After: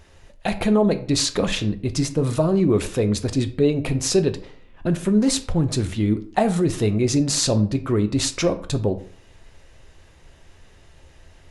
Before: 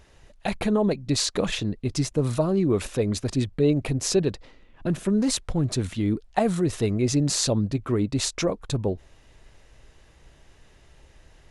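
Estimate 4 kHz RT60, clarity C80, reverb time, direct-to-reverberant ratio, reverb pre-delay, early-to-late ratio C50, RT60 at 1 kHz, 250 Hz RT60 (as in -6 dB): 0.35 s, 18.5 dB, 0.50 s, 8.0 dB, 3 ms, 14.5 dB, 0.50 s, 0.45 s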